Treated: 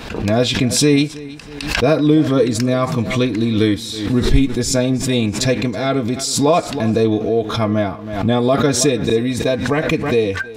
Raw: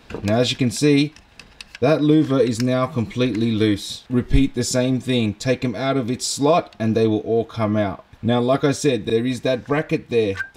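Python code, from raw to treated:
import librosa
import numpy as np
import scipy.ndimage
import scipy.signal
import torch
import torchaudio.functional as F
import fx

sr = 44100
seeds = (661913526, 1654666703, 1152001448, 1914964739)

p1 = x + fx.echo_feedback(x, sr, ms=321, feedback_pct=27, wet_db=-18.5, dry=0)
p2 = fx.pre_swell(p1, sr, db_per_s=62.0)
y = p2 * librosa.db_to_amplitude(2.0)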